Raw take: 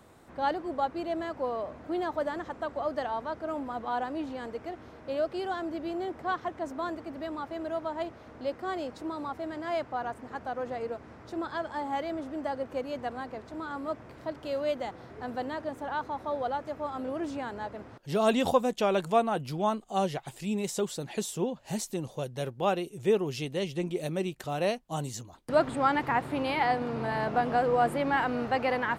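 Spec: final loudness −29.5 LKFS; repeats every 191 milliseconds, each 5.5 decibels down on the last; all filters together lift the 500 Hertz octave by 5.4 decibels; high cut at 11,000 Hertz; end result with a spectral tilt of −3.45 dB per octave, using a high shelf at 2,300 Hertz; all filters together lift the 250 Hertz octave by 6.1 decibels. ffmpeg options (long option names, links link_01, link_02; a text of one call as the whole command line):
ffmpeg -i in.wav -af "lowpass=11000,equalizer=frequency=250:width_type=o:gain=6,equalizer=frequency=500:width_type=o:gain=5.5,highshelf=frequency=2300:gain=-3,aecho=1:1:191|382|573|764|955|1146|1337:0.531|0.281|0.149|0.079|0.0419|0.0222|0.0118,volume=-3.5dB" out.wav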